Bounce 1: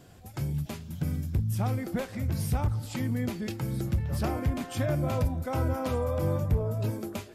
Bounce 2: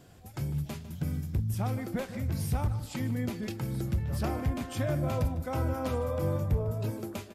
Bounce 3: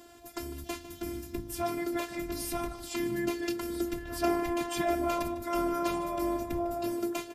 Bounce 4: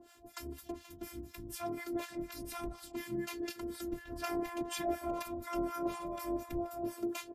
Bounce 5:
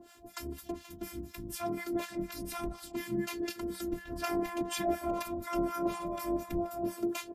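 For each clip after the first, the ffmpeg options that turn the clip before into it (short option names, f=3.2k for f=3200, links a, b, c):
-filter_complex "[0:a]asplit=2[a][b];[b]adelay=151.6,volume=-14dB,highshelf=f=4k:g=-3.41[c];[a][c]amix=inputs=2:normalize=0,volume=-2dB"
-af "afftfilt=real='hypot(re,im)*cos(PI*b)':imag='0':win_size=512:overlap=0.75,highpass=f=76:p=1,volume=8.5dB"
-filter_complex "[0:a]acrossover=split=840[a][b];[a]aeval=exprs='val(0)*(1-1/2+1/2*cos(2*PI*4.1*n/s))':c=same[c];[b]aeval=exprs='val(0)*(1-1/2-1/2*cos(2*PI*4.1*n/s))':c=same[d];[c][d]amix=inputs=2:normalize=0,volume=-2dB"
-af "equalizer=f=190:t=o:w=0.2:g=12.5,volume=3.5dB"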